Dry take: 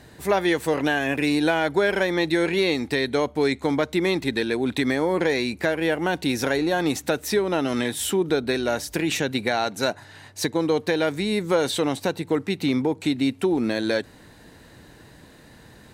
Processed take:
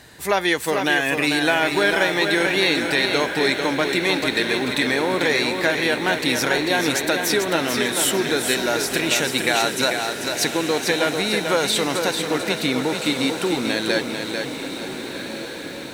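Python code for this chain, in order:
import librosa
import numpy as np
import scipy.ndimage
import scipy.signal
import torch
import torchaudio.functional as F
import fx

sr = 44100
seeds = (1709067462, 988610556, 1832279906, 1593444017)

y = fx.tilt_shelf(x, sr, db=-5.0, hz=850.0)
y = fx.echo_diffused(y, sr, ms=1481, feedback_pct=53, wet_db=-9)
y = fx.echo_crushed(y, sr, ms=443, feedback_pct=35, bits=8, wet_db=-5.5)
y = F.gain(torch.from_numpy(y), 2.0).numpy()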